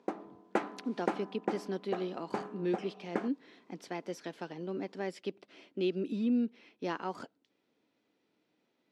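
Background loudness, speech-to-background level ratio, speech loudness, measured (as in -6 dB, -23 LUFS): -40.0 LUFS, 2.5 dB, -37.5 LUFS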